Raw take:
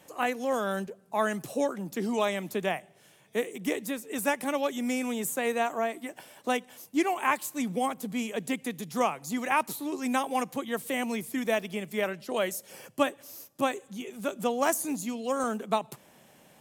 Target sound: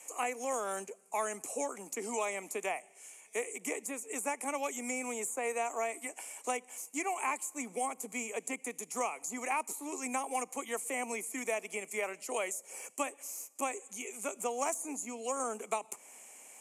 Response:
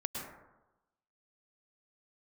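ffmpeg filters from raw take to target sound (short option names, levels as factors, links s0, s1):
-filter_complex "[0:a]highpass=f=320:w=0.5412,highpass=f=320:w=1.3066,equalizer=f=340:t=q:w=4:g=-8,equalizer=f=570:t=q:w=4:g=-6,equalizer=f=1600:t=q:w=4:g=-8,equalizer=f=2300:t=q:w=4:g=10,equalizer=f=3600:t=q:w=4:g=-10,equalizer=f=7000:t=q:w=4:g=6,lowpass=f=9700:w=0.5412,lowpass=f=9700:w=1.3066,aexciter=amount=5.2:drive=5.2:freq=6700,asoftclip=type=tanh:threshold=0.376,acrossover=split=590|1400[s0][s1][s2];[s0]acompressor=threshold=0.0126:ratio=4[s3];[s1]acompressor=threshold=0.0158:ratio=4[s4];[s2]acompressor=threshold=0.01:ratio=4[s5];[s3][s4][s5]amix=inputs=3:normalize=0"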